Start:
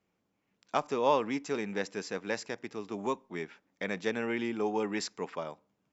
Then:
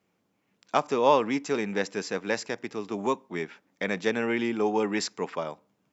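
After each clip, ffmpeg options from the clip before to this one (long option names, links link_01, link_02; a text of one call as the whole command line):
ffmpeg -i in.wav -af "highpass=86,volume=5.5dB" out.wav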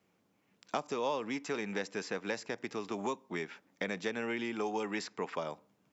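ffmpeg -i in.wav -filter_complex "[0:a]acrossover=split=670|3300[link_01][link_02][link_03];[link_01]acompressor=threshold=-37dB:ratio=4[link_04];[link_02]acompressor=threshold=-39dB:ratio=4[link_05];[link_03]acompressor=threshold=-48dB:ratio=4[link_06];[link_04][link_05][link_06]amix=inputs=3:normalize=0" out.wav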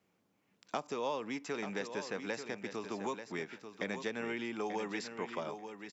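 ffmpeg -i in.wav -af "aecho=1:1:888|1776:0.355|0.0568,volume=-2.5dB" out.wav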